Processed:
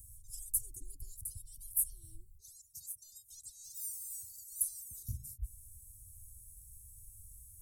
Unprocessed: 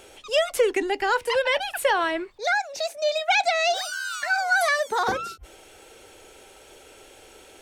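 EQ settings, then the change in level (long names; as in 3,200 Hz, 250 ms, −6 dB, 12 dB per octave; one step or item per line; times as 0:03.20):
inverse Chebyshev band-stop filter 510–2,500 Hz, stop band 80 dB
+7.0 dB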